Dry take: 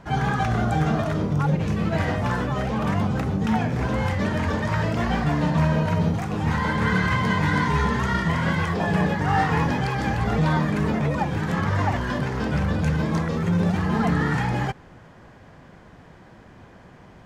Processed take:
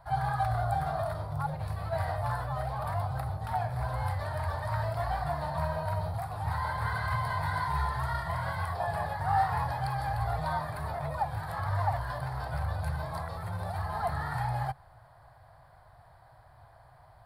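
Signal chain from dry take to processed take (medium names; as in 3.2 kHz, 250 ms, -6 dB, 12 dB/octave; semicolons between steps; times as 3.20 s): FFT filter 130 Hz 0 dB, 200 Hz -27 dB, 460 Hz -15 dB, 680 Hz +5 dB, 1.8 kHz -5 dB, 2.8 kHz -14 dB, 4.4 kHz +2 dB, 6.3 kHz -19 dB, 9.6 kHz +8 dB; trim -6.5 dB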